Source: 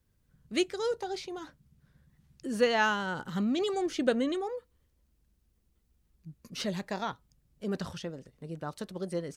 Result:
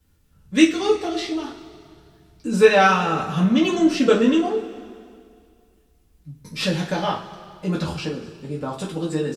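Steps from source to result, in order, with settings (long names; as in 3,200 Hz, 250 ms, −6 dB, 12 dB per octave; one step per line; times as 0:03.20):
pitch shifter −2 semitones
coupled-rooms reverb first 0.29 s, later 2.2 s, from −18 dB, DRR −5.5 dB
level +5 dB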